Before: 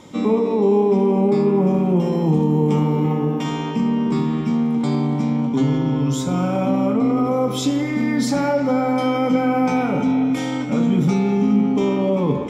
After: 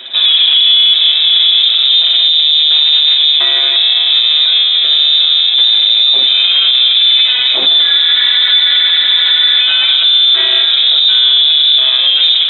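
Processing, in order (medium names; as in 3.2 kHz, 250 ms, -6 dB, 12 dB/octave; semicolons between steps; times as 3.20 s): comb filter that takes the minimum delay 7 ms; Butterworth band-stop 1 kHz, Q 3.3; treble shelf 2.5 kHz -5.5 dB; frequency inversion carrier 3.8 kHz; high-pass 290 Hz 12 dB/octave; spectral freeze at 8.14 s, 1.47 s; loudness maximiser +18.5 dB; trim -1 dB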